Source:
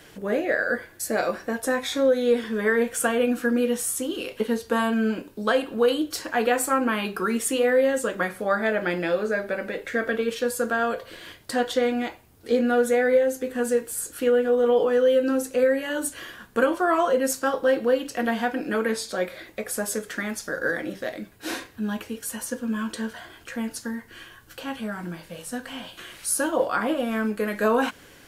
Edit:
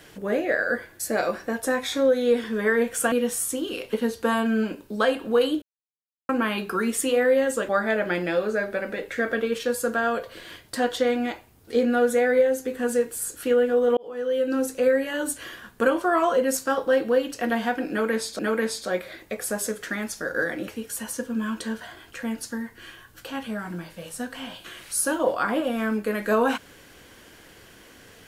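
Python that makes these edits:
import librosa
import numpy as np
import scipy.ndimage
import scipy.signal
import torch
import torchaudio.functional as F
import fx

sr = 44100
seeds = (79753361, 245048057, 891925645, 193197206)

y = fx.edit(x, sr, fx.cut(start_s=3.12, length_s=0.47),
    fx.silence(start_s=6.09, length_s=0.67),
    fx.cut(start_s=8.16, length_s=0.29),
    fx.fade_in_span(start_s=14.73, length_s=0.67),
    fx.repeat(start_s=18.66, length_s=0.49, count=2),
    fx.cut(start_s=20.95, length_s=1.06), tone=tone)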